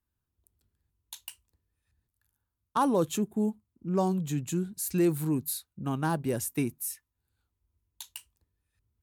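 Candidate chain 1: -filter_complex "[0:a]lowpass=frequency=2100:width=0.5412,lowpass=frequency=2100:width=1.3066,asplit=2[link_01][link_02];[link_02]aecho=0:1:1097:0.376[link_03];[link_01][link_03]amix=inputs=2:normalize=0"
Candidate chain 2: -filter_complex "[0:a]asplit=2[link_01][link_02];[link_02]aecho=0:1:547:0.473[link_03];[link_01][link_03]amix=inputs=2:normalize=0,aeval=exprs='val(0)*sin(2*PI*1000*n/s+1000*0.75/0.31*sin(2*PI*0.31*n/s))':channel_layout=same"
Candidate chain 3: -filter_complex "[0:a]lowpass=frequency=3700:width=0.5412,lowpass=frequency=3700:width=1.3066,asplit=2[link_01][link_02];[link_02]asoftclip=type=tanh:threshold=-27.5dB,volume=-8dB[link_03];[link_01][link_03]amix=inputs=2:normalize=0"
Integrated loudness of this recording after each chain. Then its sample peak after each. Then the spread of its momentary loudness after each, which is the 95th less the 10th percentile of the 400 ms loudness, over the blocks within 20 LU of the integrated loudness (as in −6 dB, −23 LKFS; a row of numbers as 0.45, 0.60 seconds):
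−30.5, −31.5, −28.5 LKFS; −14.0, −15.5, −14.5 dBFS; 14, 19, 23 LU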